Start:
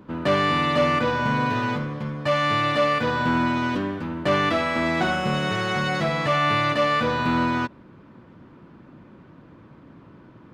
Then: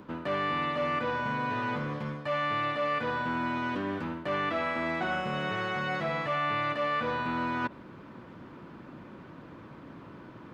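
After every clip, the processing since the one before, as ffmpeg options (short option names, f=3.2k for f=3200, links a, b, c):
-filter_complex "[0:a]areverse,acompressor=threshold=-32dB:ratio=4,areverse,lowshelf=f=300:g=-6.5,acrossover=split=3100[a][b];[b]acompressor=threshold=-60dB:ratio=4:attack=1:release=60[c];[a][c]amix=inputs=2:normalize=0,volume=4dB"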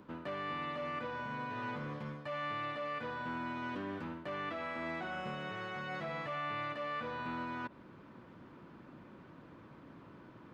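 -af "alimiter=limit=-23.5dB:level=0:latency=1:release=162,volume=-7.5dB"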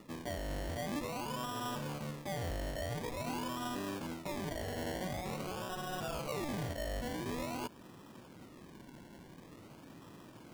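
-af "acrusher=samples=28:mix=1:aa=0.000001:lfo=1:lforange=16.8:lforate=0.47,volume=1dB"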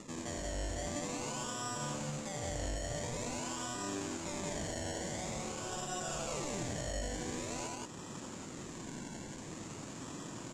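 -filter_complex "[0:a]alimiter=level_in=17dB:limit=-24dB:level=0:latency=1:release=271,volume=-17dB,lowpass=f=7.2k:t=q:w=6.5,asplit=2[a][b];[b]aecho=0:1:81.63|180.8:0.562|0.891[c];[a][c]amix=inputs=2:normalize=0,volume=4.5dB"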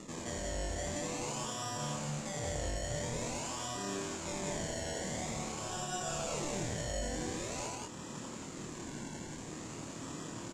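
-filter_complex "[0:a]asplit=2[a][b];[b]adelay=26,volume=-4dB[c];[a][c]amix=inputs=2:normalize=0"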